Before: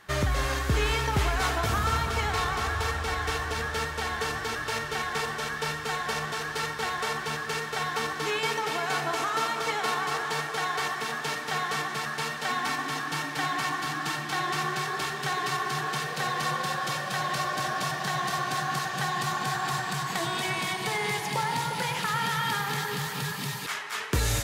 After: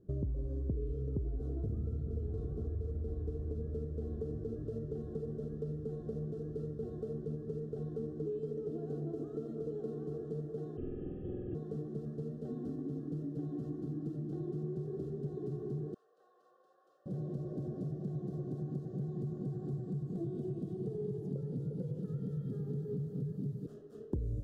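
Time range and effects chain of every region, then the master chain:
0:10.77–0:11.55: low-shelf EQ 450 Hz −5 dB + voice inversion scrambler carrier 3,500 Hz + flutter between parallel walls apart 8.2 metres, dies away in 1.5 s
0:15.94–0:17.06: four-pole ladder high-pass 870 Hz, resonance 45% + high-shelf EQ 5,200 Hz −9 dB
whole clip: inverse Chebyshev low-pass filter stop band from 840 Hz, stop band 40 dB; downward compressor 4 to 1, threshold −38 dBFS; level +3 dB

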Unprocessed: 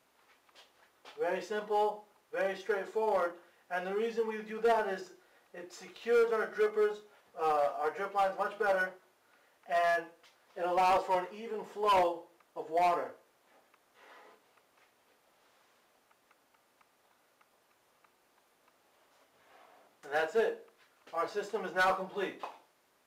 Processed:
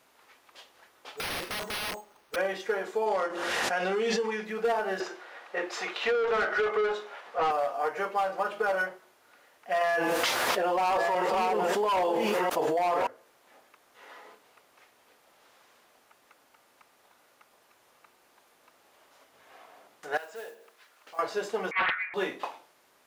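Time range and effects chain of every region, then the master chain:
0:01.17–0:02.36: bad sample-rate conversion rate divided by 6×, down none, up hold + downward compressor 12 to 1, threshold −30 dBFS + wrap-around overflow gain 35.5 dB
0:03.06–0:04.45: low-pass filter 6,100 Hz + high-shelf EQ 4,500 Hz +10 dB + background raised ahead of every attack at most 23 dB per second
0:05.00–0:07.51: high-pass filter 330 Hz 6 dB per octave + high-shelf EQ 6,800 Hz −9 dB + mid-hump overdrive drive 21 dB, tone 2,300 Hz, clips at −20 dBFS
0:09.81–0:13.07: delay that plays each chunk backwards 672 ms, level −9 dB + envelope flattener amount 100%
0:20.17–0:21.19: downward compressor 2 to 1, threshold −54 dBFS + noise that follows the level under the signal 21 dB + low-shelf EQ 360 Hz −10.5 dB
0:21.71–0:22.14: voice inversion scrambler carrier 2,600 Hz + high-pass filter 490 Hz + highs frequency-modulated by the lows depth 0.39 ms
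whole clip: low-shelf EQ 420 Hz −3.5 dB; downward compressor, threshold −32 dBFS; level +7.5 dB

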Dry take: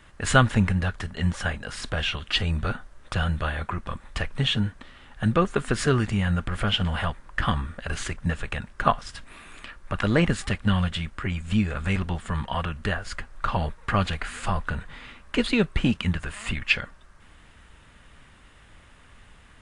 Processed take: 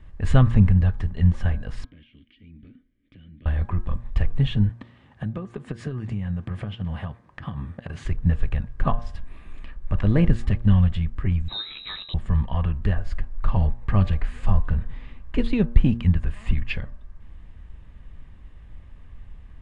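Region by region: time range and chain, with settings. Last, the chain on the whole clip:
0:01.84–0:03.46: formant filter i + downward compressor 12 to 1, threshold −45 dBFS
0:04.69–0:08.05: high-pass filter 100 Hz 24 dB per octave + transient designer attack +7 dB, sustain 0 dB + downward compressor, threshold −28 dBFS
0:11.48–0:12.14: double-tracking delay 14 ms −13 dB + voice inversion scrambler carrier 3,900 Hz
whole clip: RIAA equalisation playback; notch filter 1,400 Hz, Q 6.6; hum removal 117 Hz, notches 14; level −5.5 dB

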